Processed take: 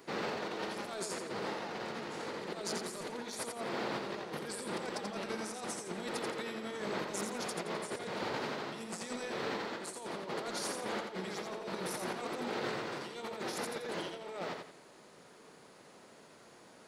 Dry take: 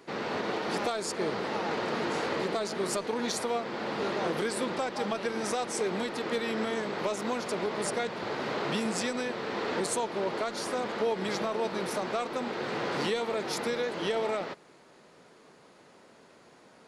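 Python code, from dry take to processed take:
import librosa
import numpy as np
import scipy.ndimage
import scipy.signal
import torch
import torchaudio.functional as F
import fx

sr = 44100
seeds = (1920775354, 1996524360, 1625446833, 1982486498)

p1 = fx.high_shelf(x, sr, hz=7700.0, db=9.5)
p2 = fx.over_compress(p1, sr, threshold_db=-34.0, ratio=-0.5)
p3 = p2 + fx.echo_feedback(p2, sr, ms=86, feedback_pct=34, wet_db=-5.0, dry=0)
y = p3 * librosa.db_to_amplitude(-6.0)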